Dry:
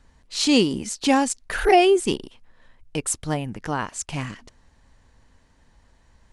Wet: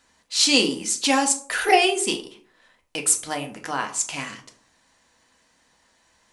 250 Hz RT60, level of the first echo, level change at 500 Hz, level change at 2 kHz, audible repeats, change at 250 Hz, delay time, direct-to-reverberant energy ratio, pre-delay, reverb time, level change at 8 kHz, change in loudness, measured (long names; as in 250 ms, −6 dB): 0.60 s, no echo audible, −4.5 dB, +3.5 dB, no echo audible, −4.5 dB, no echo audible, 3.5 dB, 3 ms, 0.50 s, +7.0 dB, +1.0 dB